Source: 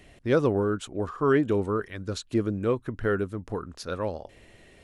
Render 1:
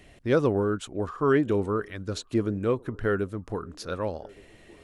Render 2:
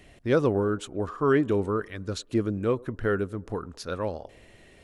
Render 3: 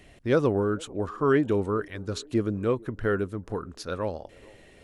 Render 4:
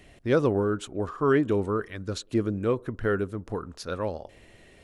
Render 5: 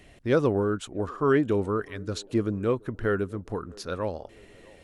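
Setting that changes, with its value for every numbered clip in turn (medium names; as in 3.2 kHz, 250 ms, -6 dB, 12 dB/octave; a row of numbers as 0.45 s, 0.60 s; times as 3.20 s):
feedback echo behind a band-pass, time: 1171 ms, 104 ms, 442 ms, 61 ms, 649 ms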